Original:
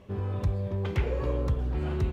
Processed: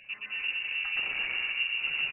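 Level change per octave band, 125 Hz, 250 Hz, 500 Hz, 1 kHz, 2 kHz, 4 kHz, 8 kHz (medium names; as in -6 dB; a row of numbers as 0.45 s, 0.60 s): under -35 dB, under -20 dB, -23.0 dB, -6.5 dB, +17.0 dB, +19.0 dB, no reading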